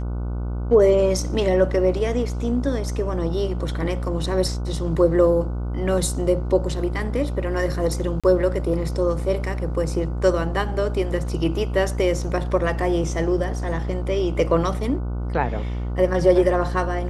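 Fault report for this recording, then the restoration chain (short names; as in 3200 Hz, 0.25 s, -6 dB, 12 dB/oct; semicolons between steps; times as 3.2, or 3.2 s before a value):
buzz 60 Hz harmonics 25 -26 dBFS
8.2–8.24 gap 36 ms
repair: de-hum 60 Hz, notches 25; interpolate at 8.2, 36 ms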